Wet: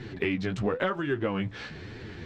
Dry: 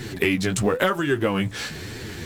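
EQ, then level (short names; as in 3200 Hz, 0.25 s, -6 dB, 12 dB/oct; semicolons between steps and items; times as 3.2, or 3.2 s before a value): air absorption 210 m; -6.0 dB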